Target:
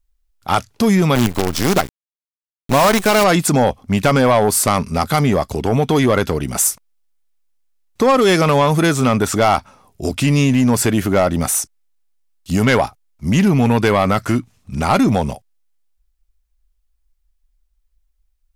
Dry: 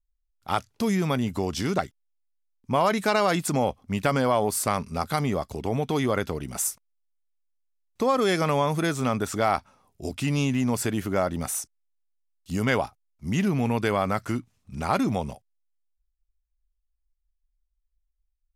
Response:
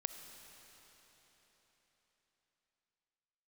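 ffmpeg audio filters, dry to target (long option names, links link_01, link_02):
-filter_complex "[0:a]asettb=1/sr,asplit=3[link_01][link_02][link_03];[link_01]atrim=end=1.154[link_04];[link_02]atrim=start=1.15:end=3.24,asetpts=PTS-STARTPTS,afade=type=in:duration=0.004:curve=qsin,afade=type=out:start_time=2.086:duration=0.004:curve=qsin,acrusher=bits=5:dc=4:mix=0:aa=0.000001[link_05];[link_03]atrim=start=3.236[link_06];[link_04][link_05]acrossfade=duration=0.004:curve1=hsin:curve2=qsin[link_07];[link_07][link_06]acrossfade=duration=0.004:curve1=qsin:curve2=hsin,aeval=exprs='0.335*(cos(1*acos(clip(val(0)/0.335,-1,1)))-cos(1*PI/2))+0.0596*(cos(5*acos(clip(val(0)/0.335,-1,1)))-cos(5*PI/2))':channel_layout=same,volume=6.5dB"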